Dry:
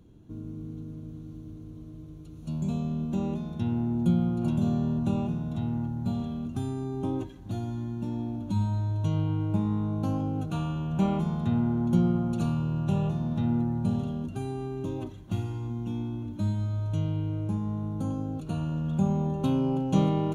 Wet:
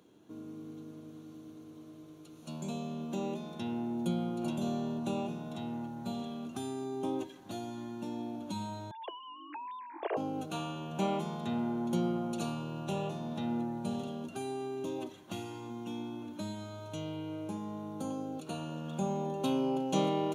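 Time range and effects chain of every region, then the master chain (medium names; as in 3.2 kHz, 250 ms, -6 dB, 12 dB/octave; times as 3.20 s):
8.91–10.17 s: formants replaced by sine waves + steep high-pass 330 Hz 96 dB/octave + small resonant body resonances 670/1600/2400 Hz, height 7 dB, ringing for 95 ms
whole clip: Bessel high-pass 500 Hz, order 2; dynamic bell 1.3 kHz, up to -6 dB, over -54 dBFS, Q 1; trim +4 dB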